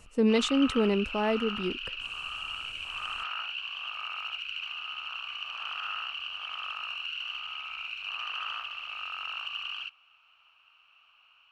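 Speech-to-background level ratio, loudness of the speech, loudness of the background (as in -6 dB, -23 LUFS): 7.5 dB, -27.5 LUFS, -35.0 LUFS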